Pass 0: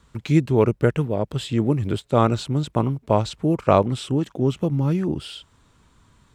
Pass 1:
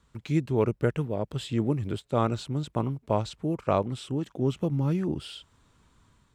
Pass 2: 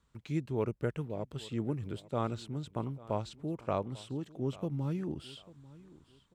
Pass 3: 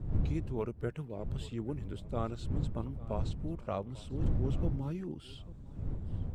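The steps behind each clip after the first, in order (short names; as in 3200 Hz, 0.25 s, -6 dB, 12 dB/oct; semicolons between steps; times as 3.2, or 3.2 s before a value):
AGC gain up to 3.5 dB; gain -8.5 dB
feedback echo 0.844 s, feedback 29%, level -20 dB; gain -8 dB
bin magnitudes rounded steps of 15 dB; wind noise 100 Hz -33 dBFS; gain -3 dB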